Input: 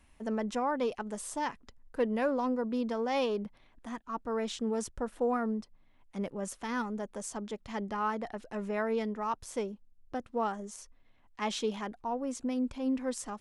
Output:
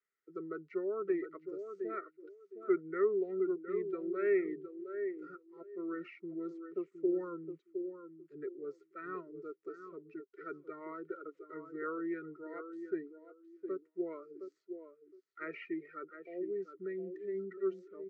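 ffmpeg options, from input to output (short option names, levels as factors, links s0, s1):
-filter_complex "[0:a]acrossover=split=170|620|3600[s0][s1][s2][s3];[s3]acompressor=threshold=0.002:ratio=6[s4];[s0][s1][s2][s4]amix=inputs=4:normalize=0,asplit=3[s5][s6][s7];[s5]bandpass=f=530:t=q:w=8,volume=1[s8];[s6]bandpass=f=1840:t=q:w=8,volume=0.501[s9];[s7]bandpass=f=2480:t=q:w=8,volume=0.355[s10];[s8][s9][s10]amix=inputs=3:normalize=0,aemphasis=mode=production:type=riaa,asplit=2[s11][s12];[s12]adelay=528,lowpass=f=4200:p=1,volume=0.422,asplit=2[s13][s14];[s14]adelay=528,lowpass=f=4200:p=1,volume=0.26,asplit=2[s15][s16];[s16]adelay=528,lowpass=f=4200:p=1,volume=0.26[s17];[s11][s13][s15][s17]amix=inputs=4:normalize=0,asetrate=32667,aresample=44100,afftdn=nr=20:nf=-52,volume=2"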